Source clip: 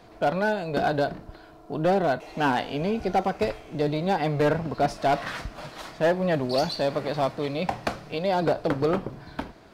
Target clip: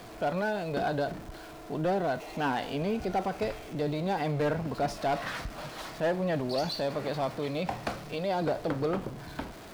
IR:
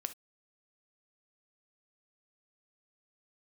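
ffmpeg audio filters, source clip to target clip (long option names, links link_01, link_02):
-af "aeval=exprs='val(0)+0.5*0.0106*sgn(val(0))':channel_layout=same,alimiter=limit=-18.5dB:level=0:latency=1:release=21,volume=-4dB"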